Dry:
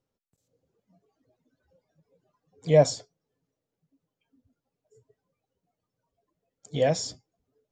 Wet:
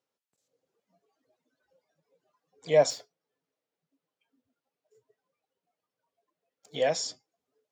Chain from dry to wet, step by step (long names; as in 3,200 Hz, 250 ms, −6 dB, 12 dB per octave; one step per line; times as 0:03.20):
0:02.90–0:06.75: running median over 5 samples
meter weighting curve A